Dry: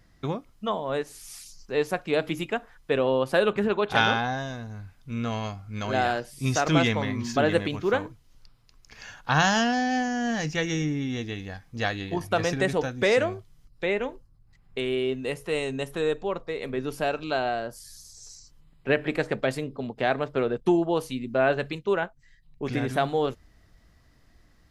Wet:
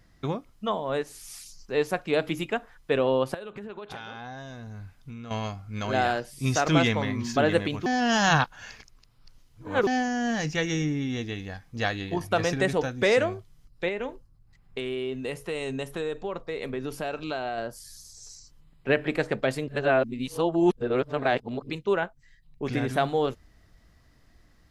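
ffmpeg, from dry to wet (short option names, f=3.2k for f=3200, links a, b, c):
-filter_complex "[0:a]asettb=1/sr,asplit=3[a][b][c];[a]atrim=end=3.344[d];[b]atrim=start=3.34:end=5.31,asetpts=PTS-STARTPTS,afade=t=in:d=0.004:c=qsin,afade=t=out:st=1.966:d=0.004:c=qsin,acompressor=threshold=-35dB:ratio=16:attack=3.2:release=140:knee=1:detection=peak[e];[c]atrim=start=5.306[f];[d][e]acrossfade=d=0.004:c1=hsin:c2=qsin[g];[g][f]acrossfade=d=0.004:c1=qsin:c2=hsin,asettb=1/sr,asplit=3[h][i][j];[h]atrim=end=13.884[k];[i]atrim=start=13.88:end=17.58,asetpts=PTS-STARTPTS,afade=t=in:d=0.004:c=qsin,afade=t=out:st=3.696:d=0.004:c=qsin,acompressor=threshold=-27dB:ratio=4:attack=3.2:release=140:knee=1:detection=peak[l];[j]atrim=start=17.576[m];[k][l]acrossfade=d=0.004:c1=hsin:c2=qsin[n];[n][m]acrossfade=d=0.004:c1=qsin:c2=hsin,asplit=5[o][p][q][r][s];[o]atrim=end=7.862[t];[p]atrim=start=7.858:end=9.872,asetpts=PTS-STARTPTS,areverse[u];[q]atrim=start=9.868:end=19.682[v];[r]atrim=start=19.678:end=21.702,asetpts=PTS-STARTPTS,areverse[w];[s]atrim=start=21.698[x];[t][u]acrossfade=d=0.004:c1=hsin:c2=hsin[y];[y][v]acrossfade=d=0.004:c1=hsin:c2=hsin[z];[z][w]acrossfade=d=0.004:c1=hsin:c2=hsin[aa];[aa][x]acrossfade=d=0.004:c1=hsin:c2=hsin"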